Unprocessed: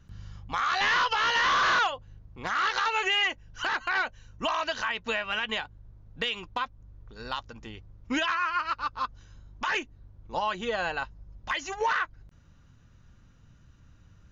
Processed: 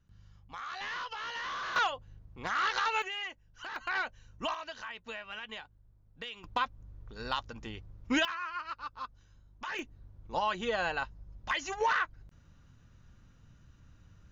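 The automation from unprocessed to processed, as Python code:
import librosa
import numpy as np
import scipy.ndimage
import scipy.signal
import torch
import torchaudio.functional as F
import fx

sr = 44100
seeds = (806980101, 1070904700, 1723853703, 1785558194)

y = fx.gain(x, sr, db=fx.steps((0.0, -14.0), (1.76, -3.5), (3.02, -13.0), (3.76, -5.5), (4.54, -12.5), (6.44, 0.0), (8.25, -10.0), (9.79, -2.0)))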